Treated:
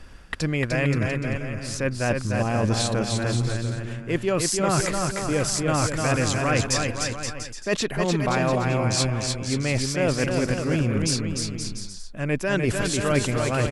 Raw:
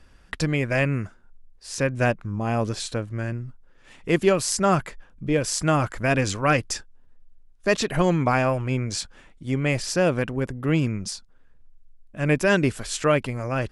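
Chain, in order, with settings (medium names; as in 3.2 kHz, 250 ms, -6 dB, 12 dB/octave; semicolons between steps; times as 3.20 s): reverse; compression 6:1, threshold -30 dBFS, peak gain reduction 15.5 dB; reverse; bouncing-ball echo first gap 300 ms, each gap 0.75×, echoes 5; trim +8.5 dB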